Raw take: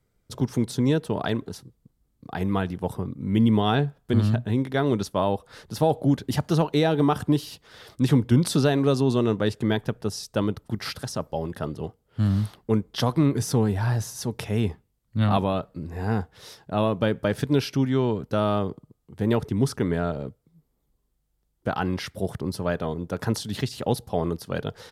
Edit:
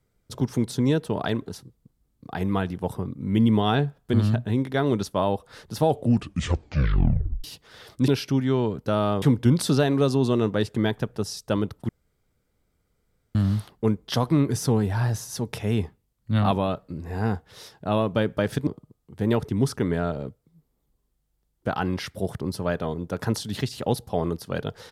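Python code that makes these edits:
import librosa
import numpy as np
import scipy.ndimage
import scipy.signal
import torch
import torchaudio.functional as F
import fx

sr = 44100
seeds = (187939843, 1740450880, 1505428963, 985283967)

y = fx.edit(x, sr, fx.tape_stop(start_s=5.87, length_s=1.57),
    fx.room_tone_fill(start_s=10.75, length_s=1.46),
    fx.move(start_s=17.53, length_s=1.14, to_s=8.08), tone=tone)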